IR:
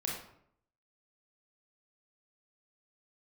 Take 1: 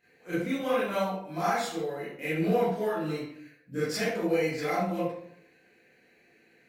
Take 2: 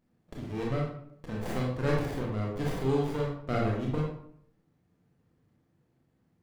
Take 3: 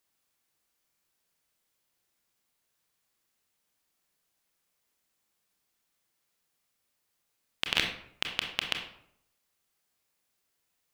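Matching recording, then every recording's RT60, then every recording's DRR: 2; 0.70 s, 0.70 s, 0.70 s; -12.0 dB, -3.0 dB, 3.0 dB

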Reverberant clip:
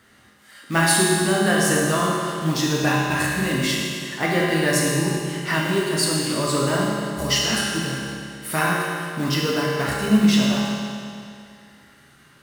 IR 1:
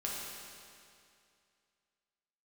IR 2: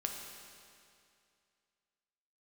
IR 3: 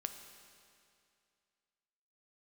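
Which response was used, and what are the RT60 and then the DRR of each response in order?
1; 2.4 s, 2.4 s, 2.4 s; -5.0 dB, 1.0 dB, 6.5 dB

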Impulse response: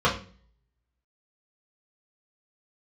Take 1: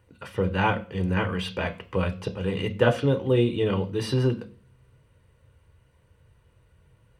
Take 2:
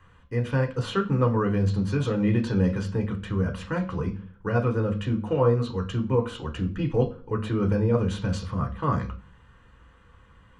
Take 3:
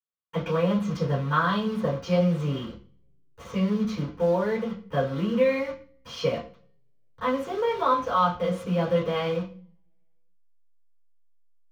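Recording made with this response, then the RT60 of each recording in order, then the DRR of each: 3; 0.40 s, 0.40 s, 0.40 s; 6.0 dB, 2.0 dB, -7.5 dB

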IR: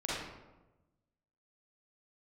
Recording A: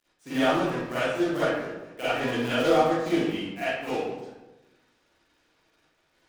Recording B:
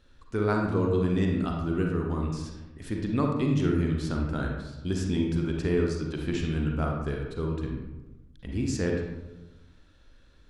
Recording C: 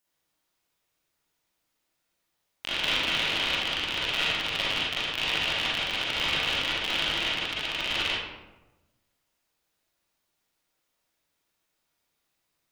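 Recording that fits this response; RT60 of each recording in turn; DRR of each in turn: C; 1.1 s, 1.1 s, 1.1 s; -14.0 dB, 0.0 dB, -8.0 dB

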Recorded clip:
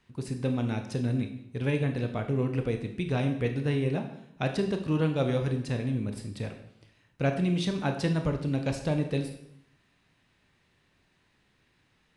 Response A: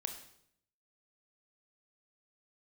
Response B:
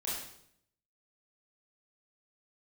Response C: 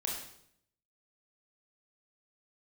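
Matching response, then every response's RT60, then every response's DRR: A; 0.70 s, 0.70 s, 0.70 s; 5.0 dB, -8.0 dB, -2.0 dB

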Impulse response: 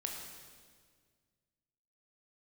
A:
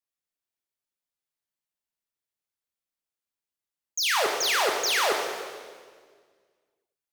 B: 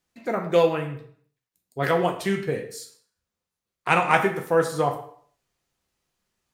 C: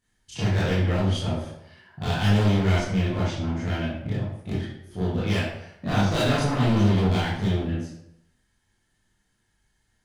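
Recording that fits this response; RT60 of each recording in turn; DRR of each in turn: A; 1.8 s, 0.55 s, 0.80 s; 0.5 dB, 3.0 dB, -10.0 dB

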